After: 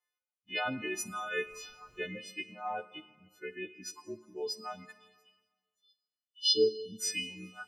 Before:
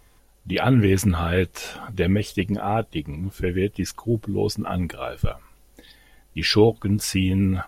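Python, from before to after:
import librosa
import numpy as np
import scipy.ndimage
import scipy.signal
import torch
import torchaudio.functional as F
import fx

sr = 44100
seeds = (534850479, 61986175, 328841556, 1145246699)

y = fx.freq_snap(x, sr, grid_st=3)
y = fx.cheby2_bandstop(y, sr, low_hz=110.0, high_hz=1300.0, order=4, stop_db=50, at=(4.92, 6.45))
y = fx.spec_box(y, sr, start_s=5.33, length_s=1.67, low_hz=470.0, high_hz=2600.0, gain_db=-30)
y = fx.weighting(y, sr, curve='A')
y = fx.dereverb_blind(y, sr, rt60_s=1.6)
y = fx.high_shelf(y, sr, hz=3500.0, db=-8.5)
y = fx.rev_schroeder(y, sr, rt60_s=2.2, comb_ms=32, drr_db=8.0)
y = fx.dmg_noise_colour(y, sr, seeds[0], colour='pink', level_db=-45.0, at=(1.44, 2.07), fade=0.02)
y = fx.spectral_expand(y, sr, expansion=1.5)
y = F.gain(torch.from_numpy(y), -7.0).numpy()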